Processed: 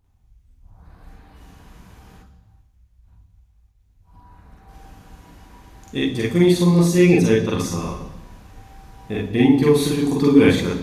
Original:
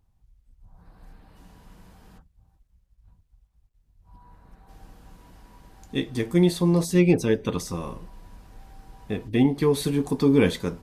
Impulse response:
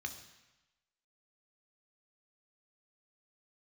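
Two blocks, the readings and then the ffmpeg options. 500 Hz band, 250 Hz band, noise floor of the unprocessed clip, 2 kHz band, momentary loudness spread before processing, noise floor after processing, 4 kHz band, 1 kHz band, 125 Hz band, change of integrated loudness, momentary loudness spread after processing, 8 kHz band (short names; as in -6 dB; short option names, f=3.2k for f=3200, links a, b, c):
+5.5 dB, +6.0 dB, -67 dBFS, +7.0 dB, 13 LU, -58 dBFS, +6.0 dB, +5.5 dB, +5.5 dB, +5.5 dB, 14 LU, +5.5 dB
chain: -filter_complex "[0:a]asplit=2[a][b];[1:a]atrim=start_sample=2205,adelay=44[c];[b][c]afir=irnorm=-1:irlink=0,volume=5dB[d];[a][d]amix=inputs=2:normalize=0,volume=1dB"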